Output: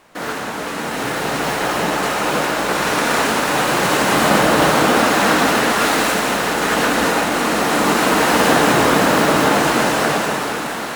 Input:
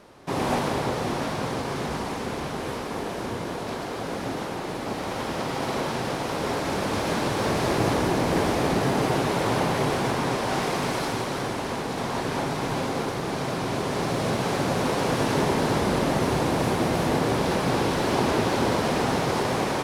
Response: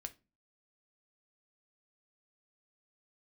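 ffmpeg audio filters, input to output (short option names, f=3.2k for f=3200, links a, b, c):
-filter_complex "[0:a]dynaudnorm=f=180:g=21:m=13dB,asplit=2[a][b];[1:a]atrim=start_sample=2205,highshelf=f=12k:g=7[c];[b][c]afir=irnorm=-1:irlink=0,volume=7dB[d];[a][d]amix=inputs=2:normalize=0,asetrate=79821,aresample=44100,volume=-7.5dB"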